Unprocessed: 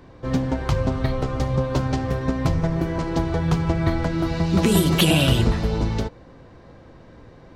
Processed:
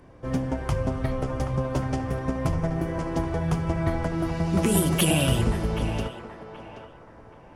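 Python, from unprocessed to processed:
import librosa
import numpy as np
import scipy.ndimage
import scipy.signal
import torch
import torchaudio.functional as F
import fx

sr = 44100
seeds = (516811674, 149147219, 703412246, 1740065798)

y = fx.graphic_eq_31(x, sr, hz=(630, 4000, 10000), db=(3, -10, 11))
y = fx.echo_banded(y, sr, ms=778, feedback_pct=40, hz=1000.0, wet_db=-7)
y = y * librosa.db_to_amplitude(-4.5)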